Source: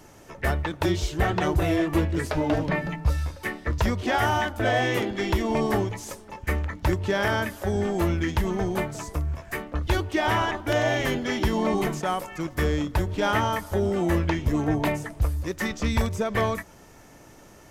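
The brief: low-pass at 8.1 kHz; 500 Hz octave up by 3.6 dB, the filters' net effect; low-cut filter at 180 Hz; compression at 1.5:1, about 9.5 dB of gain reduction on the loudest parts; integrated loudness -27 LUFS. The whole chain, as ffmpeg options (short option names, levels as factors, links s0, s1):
-af "highpass=180,lowpass=8100,equalizer=f=500:t=o:g=5,acompressor=threshold=0.00562:ratio=1.5,volume=2.24"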